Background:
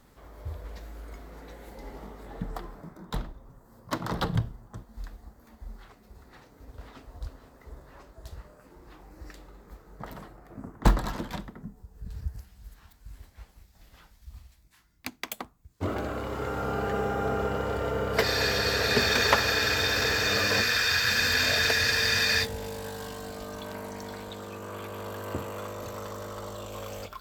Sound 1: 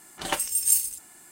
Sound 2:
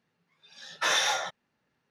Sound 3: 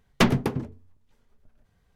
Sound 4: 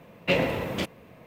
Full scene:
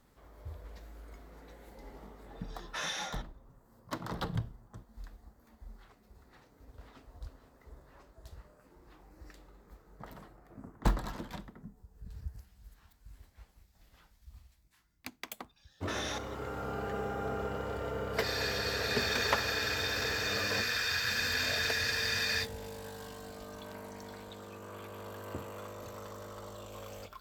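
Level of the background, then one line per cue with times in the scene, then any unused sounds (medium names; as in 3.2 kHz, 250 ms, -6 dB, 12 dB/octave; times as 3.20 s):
background -7.5 dB
1.92 s: add 2 -11.5 dB
15.05 s: add 2 -11 dB + level held to a coarse grid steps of 14 dB
not used: 1, 3, 4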